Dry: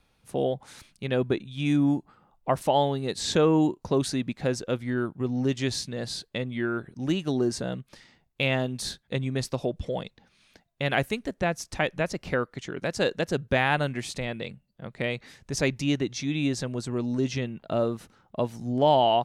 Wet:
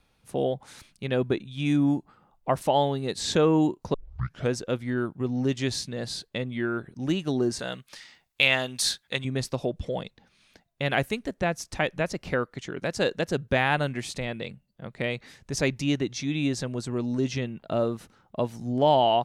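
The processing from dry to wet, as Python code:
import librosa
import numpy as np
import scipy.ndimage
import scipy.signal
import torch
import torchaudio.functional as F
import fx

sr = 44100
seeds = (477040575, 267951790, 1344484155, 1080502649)

y = fx.tilt_shelf(x, sr, db=-8.5, hz=690.0, at=(7.59, 9.25))
y = fx.edit(y, sr, fx.tape_start(start_s=3.94, length_s=0.57), tone=tone)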